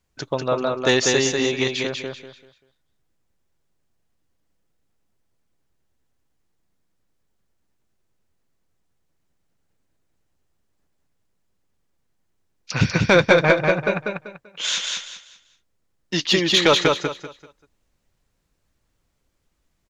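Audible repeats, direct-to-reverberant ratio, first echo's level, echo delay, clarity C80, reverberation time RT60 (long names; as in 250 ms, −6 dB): 3, no reverb audible, −3.5 dB, 194 ms, no reverb audible, no reverb audible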